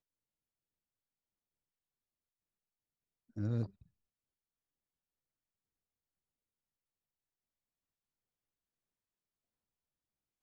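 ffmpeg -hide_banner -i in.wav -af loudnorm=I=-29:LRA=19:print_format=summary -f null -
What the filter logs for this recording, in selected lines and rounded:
Input Integrated:    -38.7 LUFS
Input True Peak:     -24.0 dBTP
Input LRA:             0.0 LU
Input Threshold:     -49.9 LUFS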